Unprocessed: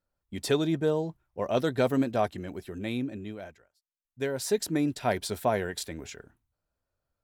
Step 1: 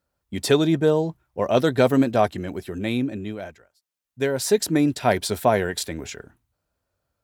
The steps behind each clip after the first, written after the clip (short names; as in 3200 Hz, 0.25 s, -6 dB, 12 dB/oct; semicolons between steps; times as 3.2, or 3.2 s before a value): HPF 48 Hz; gain +7.5 dB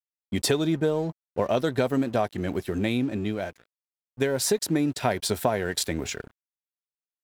compressor 5:1, threshold -25 dBFS, peak gain reduction 12 dB; crossover distortion -51 dBFS; gain +4 dB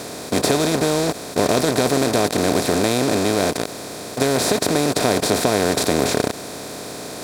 per-bin compression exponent 0.2; gain -1.5 dB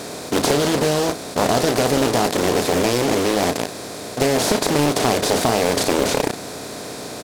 doubler 34 ms -8.5 dB; Doppler distortion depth 0.61 ms